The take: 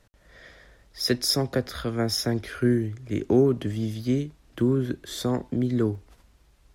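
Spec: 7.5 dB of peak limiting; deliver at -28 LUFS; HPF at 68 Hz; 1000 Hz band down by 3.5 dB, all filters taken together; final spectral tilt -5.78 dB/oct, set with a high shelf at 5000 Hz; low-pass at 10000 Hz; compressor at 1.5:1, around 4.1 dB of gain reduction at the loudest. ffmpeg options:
-af "highpass=68,lowpass=10k,equalizer=f=1k:t=o:g=-5,highshelf=f=5k:g=-6,acompressor=threshold=-27dB:ratio=1.5,volume=4dB,alimiter=limit=-17dB:level=0:latency=1"

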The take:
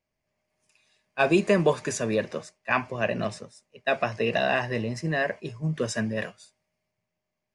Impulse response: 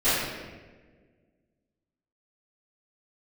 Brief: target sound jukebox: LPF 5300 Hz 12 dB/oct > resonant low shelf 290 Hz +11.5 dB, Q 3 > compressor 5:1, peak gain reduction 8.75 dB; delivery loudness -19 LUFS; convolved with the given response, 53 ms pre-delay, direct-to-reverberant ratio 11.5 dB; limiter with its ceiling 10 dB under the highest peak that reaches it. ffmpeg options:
-filter_complex "[0:a]alimiter=limit=-19dB:level=0:latency=1,asplit=2[a][b];[1:a]atrim=start_sample=2205,adelay=53[c];[b][c]afir=irnorm=-1:irlink=0,volume=-28dB[d];[a][d]amix=inputs=2:normalize=0,lowpass=5.3k,lowshelf=f=290:t=q:w=3:g=11.5,acompressor=threshold=-17dB:ratio=5,volume=5dB"

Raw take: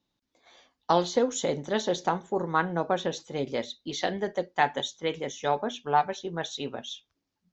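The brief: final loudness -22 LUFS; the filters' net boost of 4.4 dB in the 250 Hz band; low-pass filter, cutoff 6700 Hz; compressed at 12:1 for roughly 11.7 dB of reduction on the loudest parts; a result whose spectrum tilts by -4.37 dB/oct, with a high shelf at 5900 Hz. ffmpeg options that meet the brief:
-af "lowpass=6.7k,equalizer=f=250:t=o:g=6,highshelf=f=5.9k:g=3.5,acompressor=threshold=-28dB:ratio=12,volume=13dB"

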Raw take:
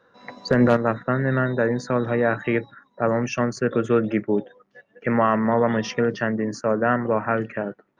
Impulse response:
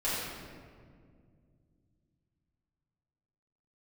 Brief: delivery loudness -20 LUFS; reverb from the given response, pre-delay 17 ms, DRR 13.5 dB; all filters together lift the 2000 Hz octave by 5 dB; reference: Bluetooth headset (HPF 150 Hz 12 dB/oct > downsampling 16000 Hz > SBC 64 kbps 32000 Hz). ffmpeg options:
-filter_complex "[0:a]equalizer=f=2k:t=o:g=6.5,asplit=2[a][b];[1:a]atrim=start_sample=2205,adelay=17[c];[b][c]afir=irnorm=-1:irlink=0,volume=-22dB[d];[a][d]amix=inputs=2:normalize=0,highpass=150,aresample=16000,aresample=44100,volume=1.5dB" -ar 32000 -c:a sbc -b:a 64k

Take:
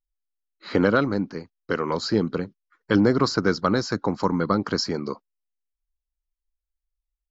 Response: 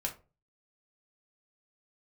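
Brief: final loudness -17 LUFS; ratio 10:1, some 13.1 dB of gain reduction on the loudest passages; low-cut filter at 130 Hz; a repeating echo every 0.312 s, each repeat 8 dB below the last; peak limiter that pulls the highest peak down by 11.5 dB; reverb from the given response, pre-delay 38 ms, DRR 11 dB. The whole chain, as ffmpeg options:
-filter_complex "[0:a]highpass=130,acompressor=threshold=-28dB:ratio=10,alimiter=level_in=1dB:limit=-24dB:level=0:latency=1,volume=-1dB,aecho=1:1:312|624|936|1248|1560:0.398|0.159|0.0637|0.0255|0.0102,asplit=2[a][b];[1:a]atrim=start_sample=2205,adelay=38[c];[b][c]afir=irnorm=-1:irlink=0,volume=-13dB[d];[a][d]amix=inputs=2:normalize=0,volume=19dB"

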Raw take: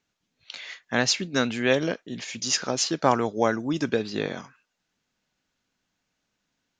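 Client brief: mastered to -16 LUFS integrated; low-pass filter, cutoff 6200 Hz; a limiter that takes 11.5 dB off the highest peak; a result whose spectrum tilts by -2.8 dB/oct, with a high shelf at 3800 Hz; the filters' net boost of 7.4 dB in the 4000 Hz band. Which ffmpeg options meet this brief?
-af "lowpass=6.2k,highshelf=f=3.8k:g=6.5,equalizer=f=4k:t=o:g=6,volume=11dB,alimiter=limit=-3dB:level=0:latency=1"

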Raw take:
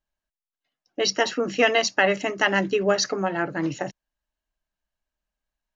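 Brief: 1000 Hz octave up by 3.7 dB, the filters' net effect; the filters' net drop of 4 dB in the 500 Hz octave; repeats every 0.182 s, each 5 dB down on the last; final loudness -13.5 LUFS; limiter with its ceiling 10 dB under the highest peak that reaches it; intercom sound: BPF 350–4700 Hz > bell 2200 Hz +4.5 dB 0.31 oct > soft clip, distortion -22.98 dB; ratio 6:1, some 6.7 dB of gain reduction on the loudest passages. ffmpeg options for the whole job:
-af "equalizer=f=500:t=o:g=-7,equalizer=f=1k:t=o:g=8.5,acompressor=threshold=-20dB:ratio=6,alimiter=limit=-16dB:level=0:latency=1,highpass=350,lowpass=4.7k,equalizer=f=2.2k:t=o:w=0.31:g=4.5,aecho=1:1:182|364|546|728|910|1092|1274:0.562|0.315|0.176|0.0988|0.0553|0.031|0.0173,asoftclip=threshold=-15.5dB,volume=15dB"

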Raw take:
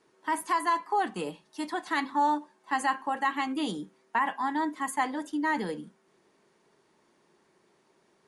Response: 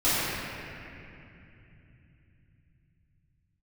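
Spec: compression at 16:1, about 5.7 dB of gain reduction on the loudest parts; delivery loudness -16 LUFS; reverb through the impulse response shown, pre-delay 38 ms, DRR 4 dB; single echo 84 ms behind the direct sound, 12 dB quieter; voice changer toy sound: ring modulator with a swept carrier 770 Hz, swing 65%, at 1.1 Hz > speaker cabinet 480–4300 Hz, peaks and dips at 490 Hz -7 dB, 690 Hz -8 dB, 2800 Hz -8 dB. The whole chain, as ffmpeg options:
-filter_complex "[0:a]acompressor=threshold=-27dB:ratio=16,aecho=1:1:84:0.251,asplit=2[a][b];[1:a]atrim=start_sample=2205,adelay=38[c];[b][c]afir=irnorm=-1:irlink=0,volume=-20.5dB[d];[a][d]amix=inputs=2:normalize=0,aeval=exprs='val(0)*sin(2*PI*770*n/s+770*0.65/1.1*sin(2*PI*1.1*n/s))':c=same,highpass=480,equalizer=f=490:t=q:w=4:g=-7,equalizer=f=690:t=q:w=4:g=-8,equalizer=f=2.8k:t=q:w=4:g=-8,lowpass=f=4.3k:w=0.5412,lowpass=f=4.3k:w=1.3066,volume=21dB"

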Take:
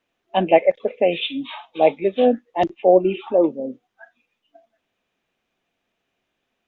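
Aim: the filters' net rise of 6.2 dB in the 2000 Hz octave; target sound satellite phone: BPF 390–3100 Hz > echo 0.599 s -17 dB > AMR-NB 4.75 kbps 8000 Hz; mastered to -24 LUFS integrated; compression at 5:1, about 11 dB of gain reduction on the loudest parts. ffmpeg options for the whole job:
-af "equalizer=f=2k:t=o:g=9,acompressor=threshold=-20dB:ratio=5,highpass=390,lowpass=3.1k,aecho=1:1:599:0.141,volume=5.5dB" -ar 8000 -c:a libopencore_amrnb -b:a 4750

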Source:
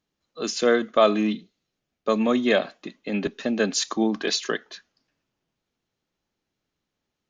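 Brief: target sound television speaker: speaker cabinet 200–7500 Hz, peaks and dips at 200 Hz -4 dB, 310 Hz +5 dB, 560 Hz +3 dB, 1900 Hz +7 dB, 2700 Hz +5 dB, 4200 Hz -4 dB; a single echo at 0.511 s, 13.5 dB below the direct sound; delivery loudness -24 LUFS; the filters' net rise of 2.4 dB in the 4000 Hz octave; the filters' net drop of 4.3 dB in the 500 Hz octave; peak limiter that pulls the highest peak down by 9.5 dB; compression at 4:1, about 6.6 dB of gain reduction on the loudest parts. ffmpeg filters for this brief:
-af "equalizer=f=500:t=o:g=-8,equalizer=f=4k:t=o:g=4,acompressor=threshold=-24dB:ratio=4,alimiter=limit=-21.5dB:level=0:latency=1,highpass=f=200:w=0.5412,highpass=f=200:w=1.3066,equalizer=f=200:t=q:w=4:g=-4,equalizer=f=310:t=q:w=4:g=5,equalizer=f=560:t=q:w=4:g=3,equalizer=f=1.9k:t=q:w=4:g=7,equalizer=f=2.7k:t=q:w=4:g=5,equalizer=f=4.2k:t=q:w=4:g=-4,lowpass=f=7.5k:w=0.5412,lowpass=f=7.5k:w=1.3066,aecho=1:1:511:0.211,volume=7.5dB"

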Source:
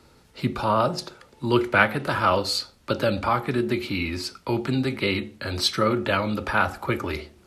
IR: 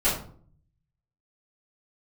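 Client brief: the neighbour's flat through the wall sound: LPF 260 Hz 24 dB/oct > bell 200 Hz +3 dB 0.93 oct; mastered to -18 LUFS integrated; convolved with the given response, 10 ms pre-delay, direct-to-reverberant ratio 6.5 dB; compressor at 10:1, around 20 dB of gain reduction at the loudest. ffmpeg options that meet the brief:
-filter_complex "[0:a]acompressor=threshold=-35dB:ratio=10,asplit=2[a][b];[1:a]atrim=start_sample=2205,adelay=10[c];[b][c]afir=irnorm=-1:irlink=0,volume=-20dB[d];[a][d]amix=inputs=2:normalize=0,lowpass=f=260:w=0.5412,lowpass=f=260:w=1.3066,equalizer=f=200:t=o:w=0.93:g=3,volume=25dB"

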